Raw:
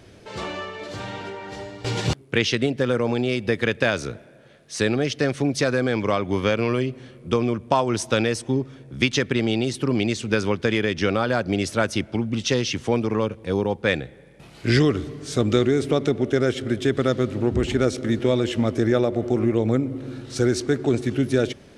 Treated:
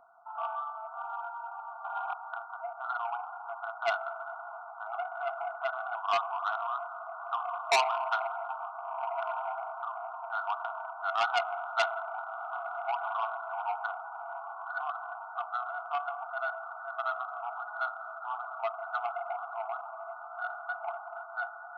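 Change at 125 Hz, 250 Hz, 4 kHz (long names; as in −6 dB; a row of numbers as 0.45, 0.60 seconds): below −40 dB, below −40 dB, −14.0 dB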